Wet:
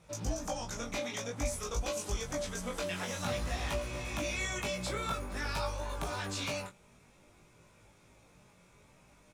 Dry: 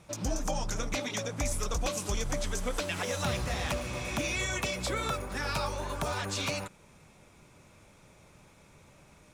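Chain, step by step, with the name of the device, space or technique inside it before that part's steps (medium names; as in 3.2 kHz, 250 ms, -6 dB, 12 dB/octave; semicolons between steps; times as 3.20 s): double-tracked vocal (doubling 17 ms -5.5 dB; chorus 0.52 Hz, delay 19 ms, depth 3 ms); trim -2 dB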